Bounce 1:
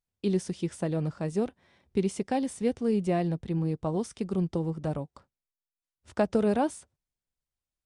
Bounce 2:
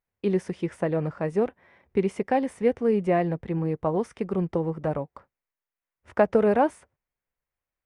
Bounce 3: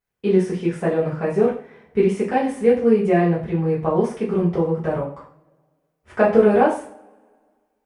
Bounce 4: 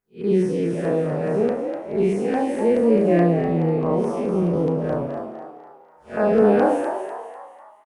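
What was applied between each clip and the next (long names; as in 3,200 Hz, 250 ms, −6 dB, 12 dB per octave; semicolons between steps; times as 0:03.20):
octave-band graphic EQ 500/1,000/2,000/4,000/8,000 Hz +6/+5/+9/−7/−9 dB
coupled-rooms reverb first 0.41 s, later 1.8 s, from −28 dB, DRR −8.5 dB; level −3 dB
spectrum smeared in time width 132 ms; auto-filter notch saw down 4.7 Hz 700–4,300 Hz; echo with shifted repeats 248 ms, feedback 43%, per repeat +84 Hz, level −7.5 dB; level +1 dB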